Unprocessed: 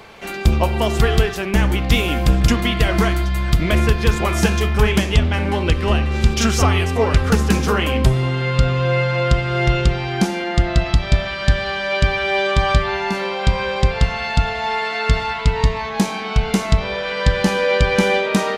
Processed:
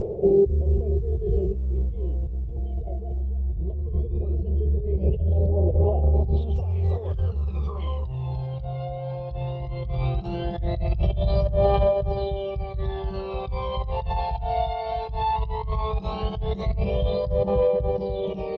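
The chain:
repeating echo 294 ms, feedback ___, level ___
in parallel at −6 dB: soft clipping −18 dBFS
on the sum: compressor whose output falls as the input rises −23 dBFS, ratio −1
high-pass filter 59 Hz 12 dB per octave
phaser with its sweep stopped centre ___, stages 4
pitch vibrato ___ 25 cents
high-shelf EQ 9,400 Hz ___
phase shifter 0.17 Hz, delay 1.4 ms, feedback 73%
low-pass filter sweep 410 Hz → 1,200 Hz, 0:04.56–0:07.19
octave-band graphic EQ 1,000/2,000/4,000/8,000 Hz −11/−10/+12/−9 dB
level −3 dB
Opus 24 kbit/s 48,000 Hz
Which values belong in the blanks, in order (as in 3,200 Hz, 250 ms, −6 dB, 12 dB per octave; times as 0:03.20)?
30%, −11.5 dB, 610 Hz, 0.36 Hz, −11.5 dB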